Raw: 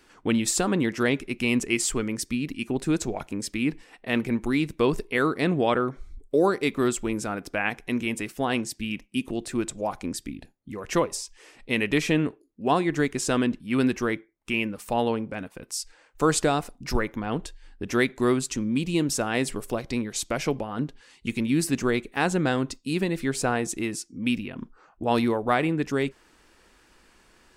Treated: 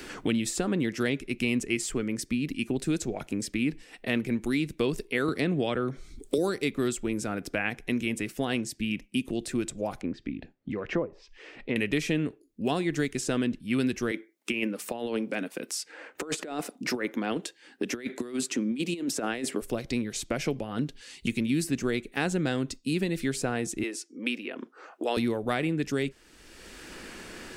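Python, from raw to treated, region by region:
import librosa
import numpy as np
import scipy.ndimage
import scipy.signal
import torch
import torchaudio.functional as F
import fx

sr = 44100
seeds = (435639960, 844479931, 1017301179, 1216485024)

y = fx.chain(x, sr, fx.high_shelf(hz=12000.0, db=-8.0),
    fx.band_squash(depth_pct=70), at=(5.28, 6.38))
y = fx.chain(y, sr, fx.lowpass(hz=1800.0, slope=12),
    fx.low_shelf(hz=160.0, db=-6.0),
    fx.env_lowpass_down(base_hz=920.0, full_db=-24.0), at=(10.01, 11.76))
y = fx.chain(y, sr, fx.highpass(hz=230.0, slope=24),
    fx.over_compress(threshold_db=-29.0, ratio=-0.5), at=(14.11, 19.62))
y = fx.chain(y, sr, fx.highpass(hz=340.0, slope=24),
    fx.high_shelf(hz=12000.0, db=-8.0), at=(23.83, 25.17))
y = fx.peak_eq(y, sr, hz=980.0, db=-8.0, octaves=0.99)
y = fx.band_squash(y, sr, depth_pct=70)
y = y * 10.0 ** (-2.5 / 20.0)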